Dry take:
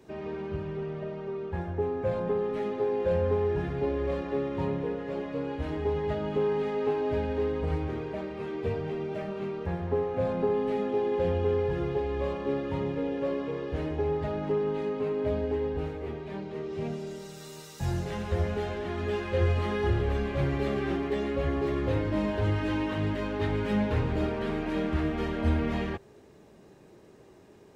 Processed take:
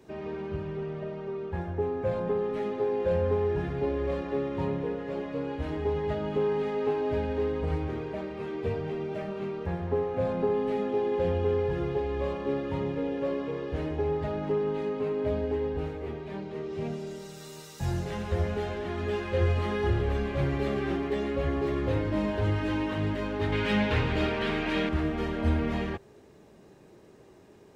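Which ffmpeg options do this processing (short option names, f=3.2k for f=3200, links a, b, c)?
-filter_complex "[0:a]asettb=1/sr,asplit=3[a][b][c];[a]atrim=end=23.524[d];[b]atrim=start=23.52:end=24.89,asetpts=PTS-STARTPTS,afade=t=in:d=0.004:c=qsin,afade=t=out:st=1.366:d=0.004:c=qsin,equalizer=f=2.9k:t=o:w=2.3:g=10.5[e];[c]atrim=start=24.886[f];[d][e]acrossfade=d=0.004:c1=hsin:c2=qsin[g];[g][f]acrossfade=d=0.004:c1=qsin:c2=hsin"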